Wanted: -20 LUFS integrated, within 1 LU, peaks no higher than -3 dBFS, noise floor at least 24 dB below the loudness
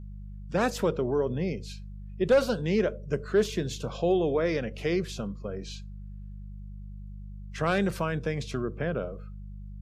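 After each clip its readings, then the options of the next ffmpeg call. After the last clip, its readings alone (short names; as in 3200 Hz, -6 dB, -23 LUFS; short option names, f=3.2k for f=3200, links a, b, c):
hum 50 Hz; harmonics up to 200 Hz; hum level -38 dBFS; loudness -29.0 LUFS; peak -14.5 dBFS; loudness target -20.0 LUFS
-> -af "bandreject=f=50:t=h:w=4,bandreject=f=100:t=h:w=4,bandreject=f=150:t=h:w=4,bandreject=f=200:t=h:w=4"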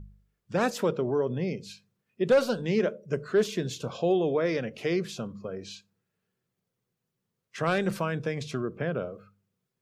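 hum none; loudness -29.0 LUFS; peak -14.5 dBFS; loudness target -20.0 LUFS
-> -af "volume=9dB"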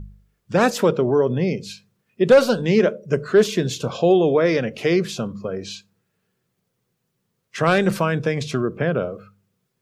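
loudness -20.0 LUFS; peak -5.5 dBFS; noise floor -74 dBFS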